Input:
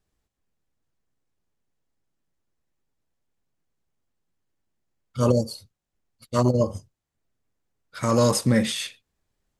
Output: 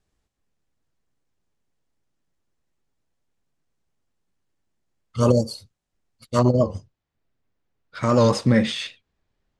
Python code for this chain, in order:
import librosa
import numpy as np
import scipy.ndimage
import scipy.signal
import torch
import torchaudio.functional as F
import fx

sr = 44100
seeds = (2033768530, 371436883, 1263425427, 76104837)

y = fx.lowpass(x, sr, hz=fx.steps((0.0, 9800.0), (6.39, 4400.0)), slope=12)
y = fx.record_warp(y, sr, rpm=78.0, depth_cents=100.0)
y = y * librosa.db_to_amplitude(2.5)